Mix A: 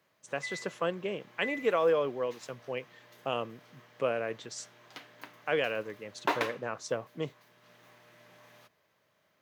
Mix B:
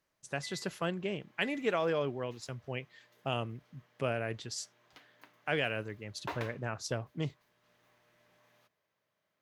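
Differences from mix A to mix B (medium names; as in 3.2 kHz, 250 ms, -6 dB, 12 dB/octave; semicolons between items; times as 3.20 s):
speech: remove cabinet simulation 200–8800 Hz, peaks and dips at 500 Hz +8 dB, 1.1 kHz +6 dB, 4.8 kHz -6 dB; background -10.5 dB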